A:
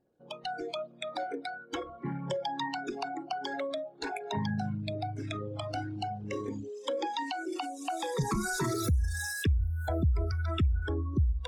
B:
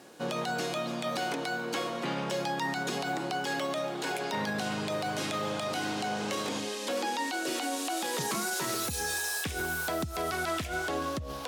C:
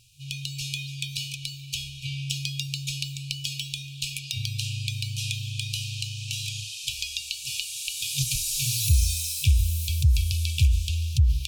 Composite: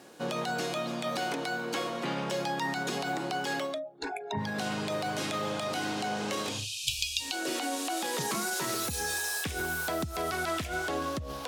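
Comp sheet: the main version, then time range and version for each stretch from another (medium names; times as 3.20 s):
B
3.68–4.48 s: from A, crossfade 0.24 s
6.55–7.31 s: from C, crossfade 0.24 s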